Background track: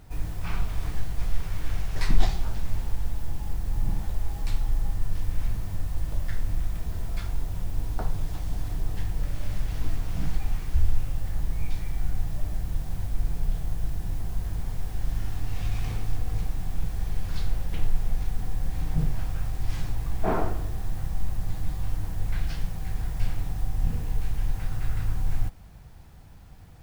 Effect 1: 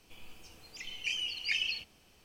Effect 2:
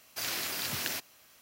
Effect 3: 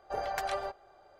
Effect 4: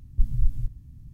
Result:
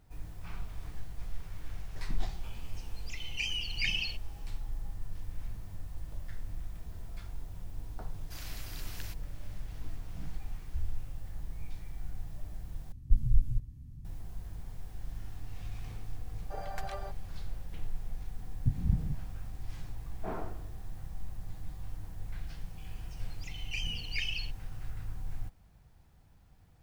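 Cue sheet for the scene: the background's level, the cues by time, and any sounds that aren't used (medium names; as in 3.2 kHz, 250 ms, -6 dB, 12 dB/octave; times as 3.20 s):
background track -12.5 dB
2.33 s: add 1 -0.5 dB
8.14 s: add 2 -13.5 dB
12.92 s: replace with 4 -2.5 dB
16.40 s: add 3 -8 dB
18.47 s: add 4 -8.5 dB + whisper effect
22.67 s: add 1 -4 dB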